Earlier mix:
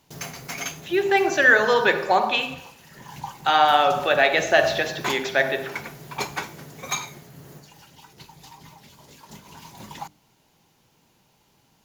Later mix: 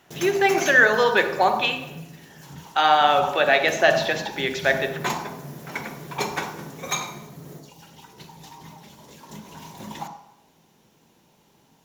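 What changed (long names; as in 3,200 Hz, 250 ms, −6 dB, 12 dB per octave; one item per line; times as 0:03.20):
speech: entry −0.70 s
background: send on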